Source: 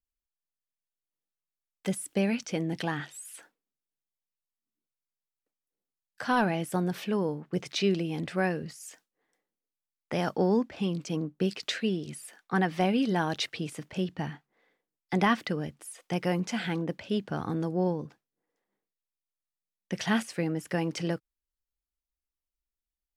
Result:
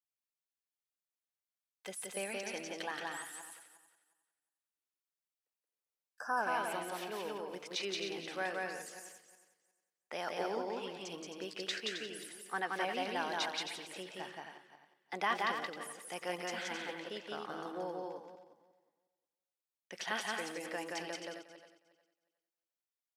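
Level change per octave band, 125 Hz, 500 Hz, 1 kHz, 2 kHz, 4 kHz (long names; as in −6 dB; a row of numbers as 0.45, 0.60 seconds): −24.0, −9.0, −4.5, −3.5, −3.5 decibels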